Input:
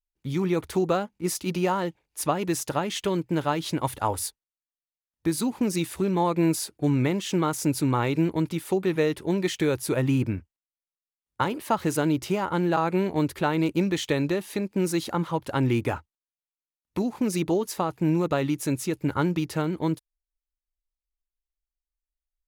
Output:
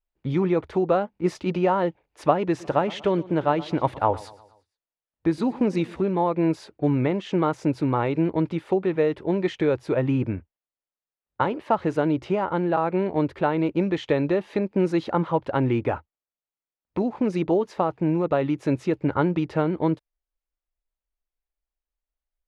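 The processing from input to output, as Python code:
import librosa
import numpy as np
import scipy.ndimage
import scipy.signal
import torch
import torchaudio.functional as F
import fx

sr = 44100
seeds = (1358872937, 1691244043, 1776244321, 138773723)

y = fx.echo_feedback(x, sr, ms=118, feedback_pct=48, wet_db=-19.5, at=(2.57, 5.99), fade=0.02)
y = scipy.signal.sosfilt(scipy.signal.butter(2, 2700.0, 'lowpass', fs=sr, output='sos'), y)
y = fx.peak_eq(y, sr, hz=590.0, db=6.0, octaves=1.3)
y = fx.rider(y, sr, range_db=10, speed_s=0.5)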